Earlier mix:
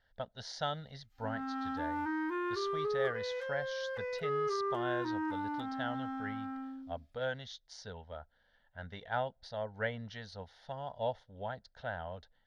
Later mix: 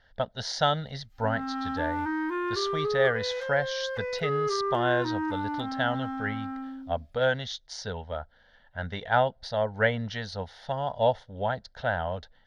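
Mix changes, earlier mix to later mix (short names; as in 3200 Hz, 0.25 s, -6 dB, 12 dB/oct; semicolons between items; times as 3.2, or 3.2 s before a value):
speech +11.5 dB; background +5.5 dB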